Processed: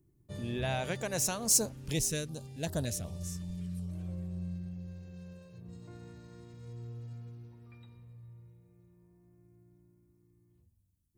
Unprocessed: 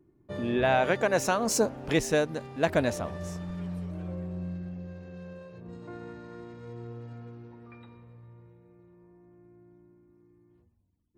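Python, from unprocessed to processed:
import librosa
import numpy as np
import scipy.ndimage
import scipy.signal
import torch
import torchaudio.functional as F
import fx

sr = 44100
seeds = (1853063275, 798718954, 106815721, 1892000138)

y = fx.curve_eq(x, sr, hz=(140.0, 260.0, 1400.0, 9400.0), db=(0, -10, -13, 8))
y = fx.filter_held_notch(y, sr, hz=5.3, low_hz=690.0, high_hz=2300.0, at=(1.72, 3.89))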